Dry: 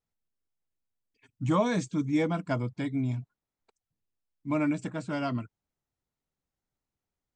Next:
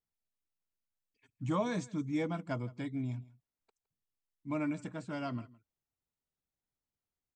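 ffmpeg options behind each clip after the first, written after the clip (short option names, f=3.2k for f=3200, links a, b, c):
-af "aecho=1:1:163:0.0841,volume=-7dB"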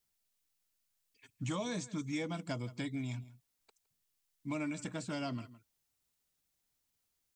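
-filter_complex "[0:a]acrossover=split=810|2500[a][b][c];[a]acompressor=threshold=-41dB:ratio=4[d];[b]acompressor=threshold=-57dB:ratio=4[e];[c]acompressor=threshold=-58dB:ratio=4[f];[d][e][f]amix=inputs=3:normalize=0,highshelf=f=2.3k:g=10,volume=4dB"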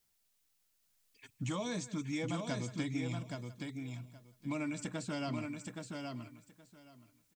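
-af "acompressor=threshold=-47dB:ratio=1.5,aecho=1:1:822|1644|2466:0.596|0.0893|0.0134,volume=4.5dB"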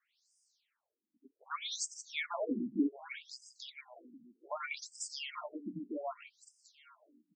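-af "highpass=170,afftfilt=real='re*between(b*sr/1024,240*pow(6900/240,0.5+0.5*sin(2*PI*0.65*pts/sr))/1.41,240*pow(6900/240,0.5+0.5*sin(2*PI*0.65*pts/sr))*1.41)':imag='im*between(b*sr/1024,240*pow(6900/240,0.5+0.5*sin(2*PI*0.65*pts/sr))/1.41,240*pow(6900/240,0.5+0.5*sin(2*PI*0.65*pts/sr))*1.41)':win_size=1024:overlap=0.75,volume=9dB"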